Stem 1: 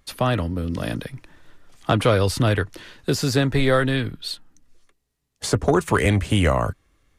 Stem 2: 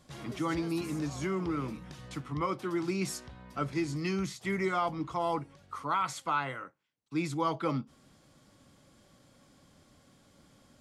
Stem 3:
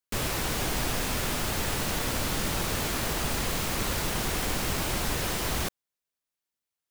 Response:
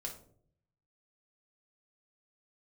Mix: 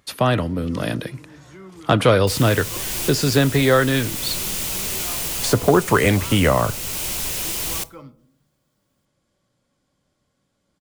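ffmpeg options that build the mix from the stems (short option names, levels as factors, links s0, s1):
-filter_complex "[0:a]highpass=100,volume=1.33,asplit=3[s0][s1][s2];[s1]volume=0.178[s3];[1:a]adelay=300,volume=0.224,asplit=2[s4][s5];[s5]volume=0.708[s6];[2:a]aexciter=amount=2.6:drive=5.5:freq=2300,adelay=2150,volume=0.562,asplit=2[s7][s8];[s8]volume=0.282[s9];[s2]apad=whole_len=399129[s10];[s7][s10]sidechaincompress=threshold=0.1:ratio=8:attack=9.9:release=605[s11];[3:a]atrim=start_sample=2205[s12];[s3][s6][s9]amix=inputs=3:normalize=0[s13];[s13][s12]afir=irnorm=-1:irlink=0[s14];[s0][s4][s11][s14]amix=inputs=4:normalize=0"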